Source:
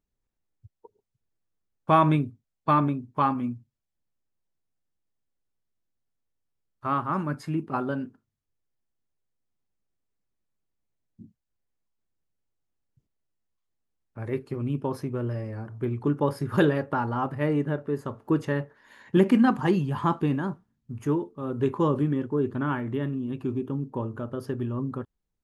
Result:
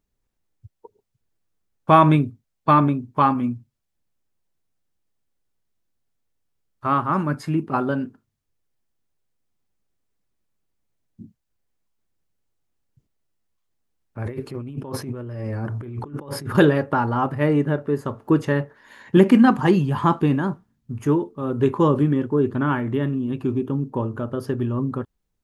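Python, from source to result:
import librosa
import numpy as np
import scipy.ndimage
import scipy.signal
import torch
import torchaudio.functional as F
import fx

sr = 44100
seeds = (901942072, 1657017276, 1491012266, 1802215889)

y = fx.over_compress(x, sr, threshold_db=-37.0, ratio=-1.0, at=(14.23, 16.55))
y = y * 10.0 ** (6.0 / 20.0)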